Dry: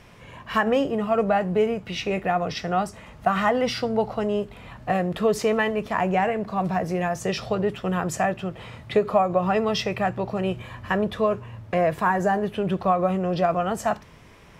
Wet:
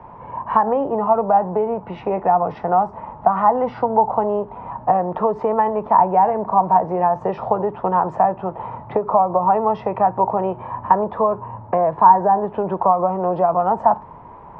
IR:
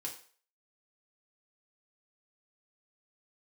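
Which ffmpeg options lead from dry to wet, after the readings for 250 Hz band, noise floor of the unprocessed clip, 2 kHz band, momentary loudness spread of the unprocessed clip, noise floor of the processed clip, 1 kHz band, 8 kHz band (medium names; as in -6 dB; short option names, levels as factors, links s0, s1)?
-0.5 dB, -48 dBFS, -8.0 dB, 6 LU, -40 dBFS, +10.0 dB, under -30 dB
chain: -filter_complex "[0:a]acrossover=split=110|280[s0][s1][s2];[s0]acompressor=threshold=0.00178:ratio=4[s3];[s1]acompressor=threshold=0.0126:ratio=4[s4];[s2]acompressor=threshold=0.0501:ratio=4[s5];[s3][s4][s5]amix=inputs=3:normalize=0,lowpass=f=920:t=q:w=8,volume=1.78"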